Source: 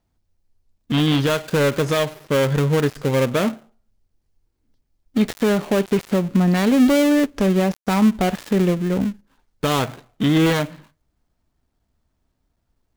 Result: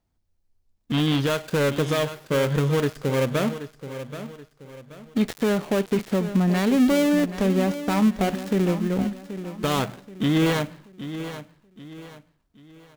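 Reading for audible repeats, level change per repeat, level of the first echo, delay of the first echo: 3, −8.5 dB, −12.0 dB, 779 ms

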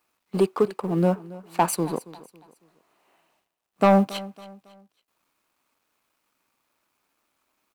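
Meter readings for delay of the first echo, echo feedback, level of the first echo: 276 ms, 37%, −19.0 dB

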